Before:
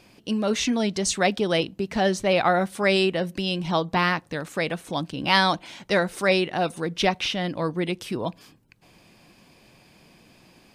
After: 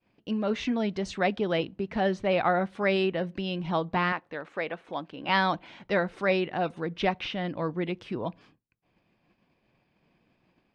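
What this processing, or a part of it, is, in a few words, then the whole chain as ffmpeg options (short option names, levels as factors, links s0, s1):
hearing-loss simulation: -filter_complex "[0:a]asettb=1/sr,asplit=3[s0][s1][s2];[s0]atrim=end=4.124[s3];[s1]atrim=start=4.12:end=5.29,asetpts=PTS-STARTPTS,afade=t=in:d=0.004:c=qsin,afade=t=out:st=1.166:d=0.004:c=qsin,bass=f=250:g=-13,treble=f=4000:g=-6[s4];[s2]atrim=start=5.286[s5];[s3][s4]acrossfade=d=0.004:c1=hsin:c2=qsin[s6];[s6][s5]acrossfade=d=0.004:c1=qsin:c2=hsin,lowpass=2700,agate=range=0.0224:threshold=0.00447:ratio=3:detection=peak,volume=0.631"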